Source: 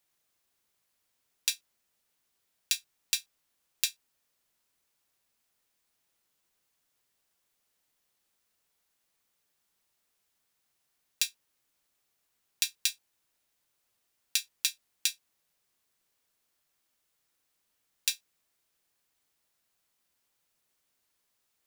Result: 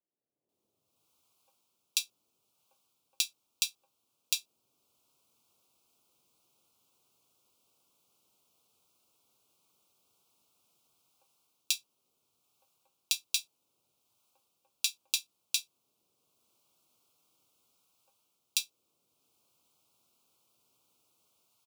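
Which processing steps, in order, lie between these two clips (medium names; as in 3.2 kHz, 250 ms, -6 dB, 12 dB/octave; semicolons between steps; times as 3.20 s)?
high-pass 93 Hz 24 dB/octave; treble shelf 2 kHz -7 dB; level rider gain up to 15 dB; Butterworth band-stop 1.8 kHz, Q 1.4; three bands offset in time mids, lows, highs 190/490 ms, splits 170/650 Hz; trim -4 dB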